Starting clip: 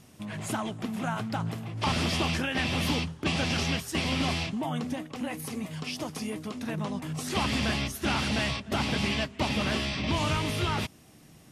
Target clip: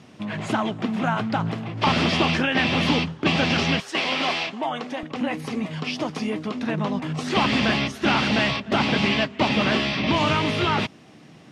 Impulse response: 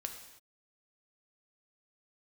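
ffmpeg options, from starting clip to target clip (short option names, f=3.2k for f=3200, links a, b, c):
-af "asetnsamples=n=441:p=0,asendcmd='3.8 highpass f 440;5.03 highpass f 150',highpass=140,lowpass=4k,volume=8.5dB"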